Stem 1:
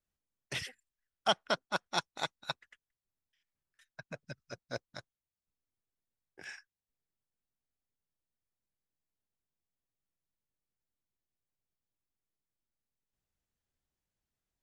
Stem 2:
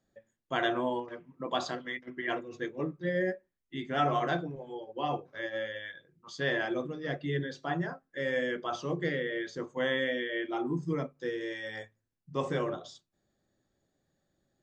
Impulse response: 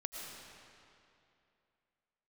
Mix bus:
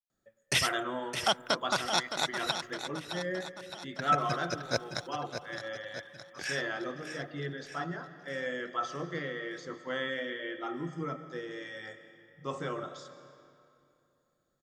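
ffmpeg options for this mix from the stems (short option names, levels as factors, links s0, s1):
-filter_complex "[0:a]agate=range=0.0224:threshold=0.00141:ratio=3:detection=peak,alimiter=limit=0.0631:level=0:latency=1:release=117,acontrast=67,volume=1.26,asplit=2[s0][s1];[s1]volume=0.355[s2];[1:a]equalizer=f=1300:w=5.3:g=11.5,adelay=100,volume=0.376,asplit=2[s3][s4];[s4]volume=0.562[s5];[2:a]atrim=start_sample=2205[s6];[s5][s6]afir=irnorm=-1:irlink=0[s7];[s2]aecho=0:1:615|1230|1845|2460|3075|3690|4305|4920|5535:1|0.57|0.325|0.185|0.106|0.0602|0.0343|0.0195|0.0111[s8];[s0][s3][s7][s8]amix=inputs=4:normalize=0,highshelf=f=5200:g=8.5"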